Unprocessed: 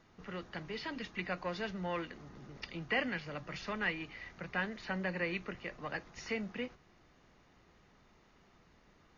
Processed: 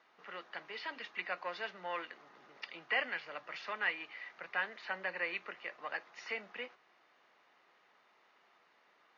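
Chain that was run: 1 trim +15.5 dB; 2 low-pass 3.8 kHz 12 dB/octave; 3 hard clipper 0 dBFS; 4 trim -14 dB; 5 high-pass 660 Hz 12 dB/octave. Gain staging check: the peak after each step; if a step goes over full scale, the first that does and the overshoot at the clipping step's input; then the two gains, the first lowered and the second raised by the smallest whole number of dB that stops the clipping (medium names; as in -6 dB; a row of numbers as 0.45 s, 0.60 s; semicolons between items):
-4.5 dBFS, -5.0 dBFS, -5.0 dBFS, -19.0 dBFS, -20.0 dBFS; nothing clips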